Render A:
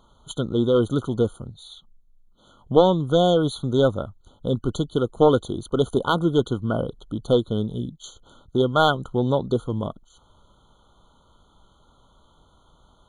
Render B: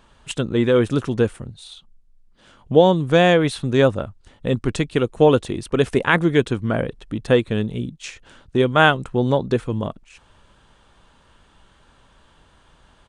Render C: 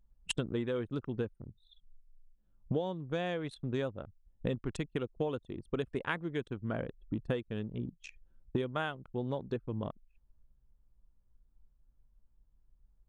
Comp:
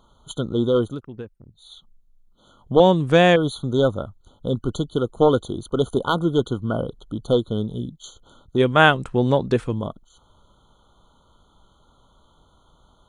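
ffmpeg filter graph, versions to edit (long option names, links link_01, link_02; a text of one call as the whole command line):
ffmpeg -i take0.wav -i take1.wav -i take2.wav -filter_complex "[1:a]asplit=2[link_01][link_02];[0:a]asplit=4[link_03][link_04][link_05][link_06];[link_03]atrim=end=1.01[link_07];[2:a]atrim=start=0.77:end=1.75[link_08];[link_04]atrim=start=1.51:end=2.802[link_09];[link_01]atrim=start=2.798:end=3.362[link_10];[link_05]atrim=start=3.358:end=8.62[link_11];[link_02]atrim=start=8.56:end=9.76[link_12];[link_06]atrim=start=9.7[link_13];[link_07][link_08]acrossfade=duration=0.24:curve1=tri:curve2=tri[link_14];[link_14][link_09]acrossfade=duration=0.24:curve1=tri:curve2=tri[link_15];[link_15][link_10]acrossfade=duration=0.004:curve1=hsin:curve2=hsin[link_16];[link_16][link_11]acrossfade=duration=0.004:curve1=hsin:curve2=hsin[link_17];[link_17][link_12]acrossfade=duration=0.06:curve1=tri:curve2=tri[link_18];[link_18][link_13]acrossfade=duration=0.06:curve1=tri:curve2=tri" out.wav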